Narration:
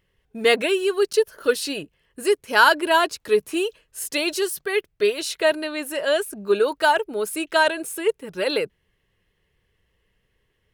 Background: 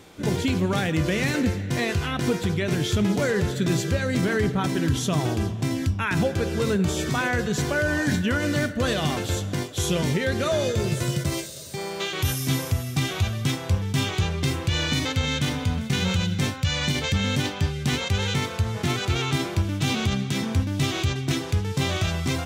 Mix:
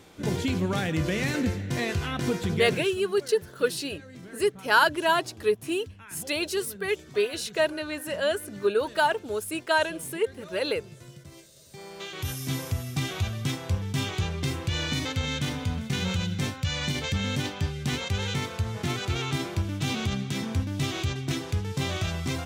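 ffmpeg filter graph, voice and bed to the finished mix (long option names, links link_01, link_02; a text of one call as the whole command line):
ffmpeg -i stem1.wav -i stem2.wav -filter_complex "[0:a]adelay=2150,volume=-5dB[link_01];[1:a]volume=13.5dB,afade=type=out:start_time=2.56:duration=0.4:silence=0.125893,afade=type=in:start_time=11.33:duration=1.49:silence=0.141254[link_02];[link_01][link_02]amix=inputs=2:normalize=0" out.wav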